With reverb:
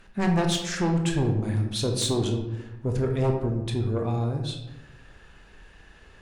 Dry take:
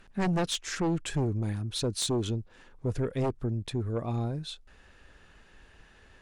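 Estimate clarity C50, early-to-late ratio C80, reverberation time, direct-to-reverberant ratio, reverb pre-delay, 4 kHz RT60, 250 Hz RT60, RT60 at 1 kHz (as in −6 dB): 6.0 dB, 8.5 dB, 1.0 s, 3.0 dB, 18 ms, 0.55 s, 1.3 s, 0.95 s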